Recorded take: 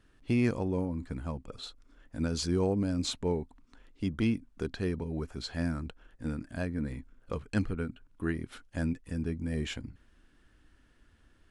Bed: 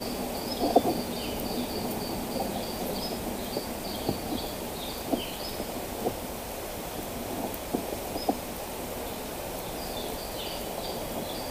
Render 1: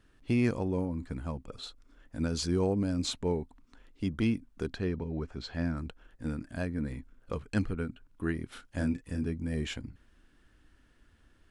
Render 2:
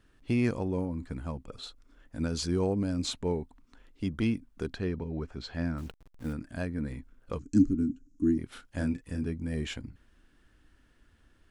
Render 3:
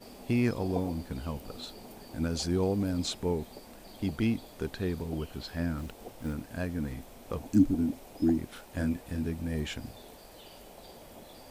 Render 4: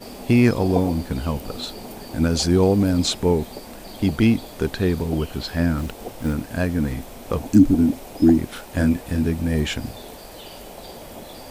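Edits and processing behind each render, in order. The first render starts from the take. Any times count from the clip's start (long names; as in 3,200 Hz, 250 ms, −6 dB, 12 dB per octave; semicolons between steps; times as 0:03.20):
0:04.78–0:05.77: high-frequency loss of the air 100 metres; 0:08.47–0:09.27: double-tracking delay 33 ms −5 dB
0:05.78–0:06.33: hold until the input has moved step −50 dBFS; 0:07.39–0:08.38: drawn EQ curve 170 Hz 0 dB, 290 Hz +15 dB, 550 Hz −23 dB, 1,300 Hz −16 dB, 3,500 Hz −17 dB, 6,700 Hz +12 dB, 12,000 Hz −21 dB
mix in bed −16 dB
level +11.5 dB; brickwall limiter −3 dBFS, peak gain reduction 3 dB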